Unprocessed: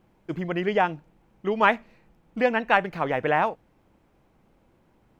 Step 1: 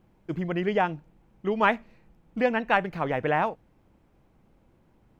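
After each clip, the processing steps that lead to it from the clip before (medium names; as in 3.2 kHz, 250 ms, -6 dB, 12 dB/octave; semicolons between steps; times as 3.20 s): bass shelf 240 Hz +6 dB; trim -3 dB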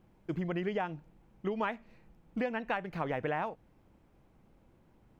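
compression 6:1, threshold -28 dBFS, peak gain reduction 11.5 dB; trim -2 dB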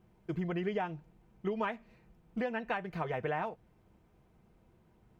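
comb of notches 280 Hz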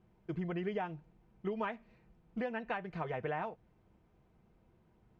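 distance through air 76 m; trim -2.5 dB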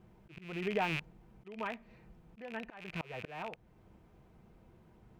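rattle on loud lows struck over -54 dBFS, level -31 dBFS; slow attack 586 ms; trim +7 dB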